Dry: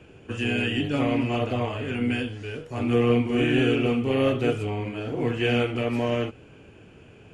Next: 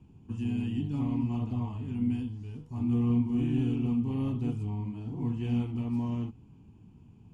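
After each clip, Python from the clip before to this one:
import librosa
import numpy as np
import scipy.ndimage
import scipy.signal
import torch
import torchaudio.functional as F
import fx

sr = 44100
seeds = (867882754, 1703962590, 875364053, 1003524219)

y = fx.curve_eq(x, sr, hz=(130.0, 220.0, 560.0, 940.0, 1500.0, 5100.0), db=(0, 2, -25, -5, -26, -13))
y = y * librosa.db_to_amplitude(-2.0)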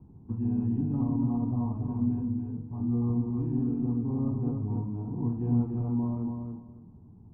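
y = scipy.signal.sosfilt(scipy.signal.butter(4, 1100.0, 'lowpass', fs=sr, output='sos'), x)
y = fx.rider(y, sr, range_db=5, speed_s=2.0)
y = fx.echo_feedback(y, sr, ms=283, feedback_pct=22, wet_db=-5)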